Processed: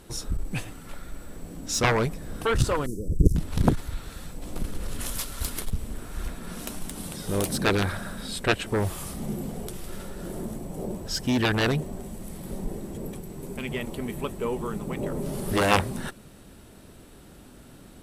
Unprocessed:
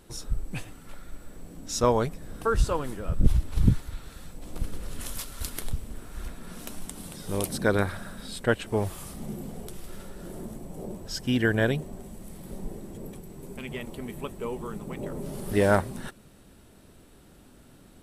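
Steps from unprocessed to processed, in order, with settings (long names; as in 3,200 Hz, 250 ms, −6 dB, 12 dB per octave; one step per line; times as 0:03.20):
harmonic generator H 7 −8 dB, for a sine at −5 dBFS
0:02.86–0:03.36: elliptic band-stop filter 430–5,900 Hz, stop band 40 dB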